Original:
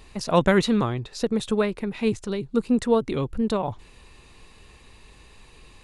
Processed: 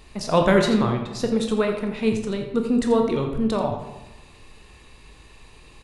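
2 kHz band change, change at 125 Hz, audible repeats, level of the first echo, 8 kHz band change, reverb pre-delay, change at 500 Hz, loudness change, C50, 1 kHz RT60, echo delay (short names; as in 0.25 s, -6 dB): +1.5 dB, +1.5 dB, 1, -11.0 dB, +1.0 dB, 16 ms, +2.0 dB, +2.0 dB, 5.5 dB, 1.0 s, 85 ms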